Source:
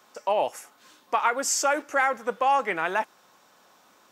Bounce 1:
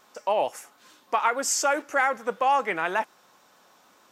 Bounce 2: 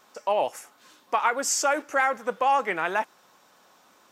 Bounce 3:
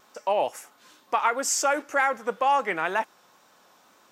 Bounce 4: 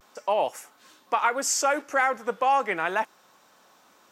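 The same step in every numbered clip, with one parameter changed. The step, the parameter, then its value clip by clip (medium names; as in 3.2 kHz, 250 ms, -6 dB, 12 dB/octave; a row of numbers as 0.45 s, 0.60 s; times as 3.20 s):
vibrato, rate: 6.8 Hz, 11 Hz, 2.1 Hz, 0.36 Hz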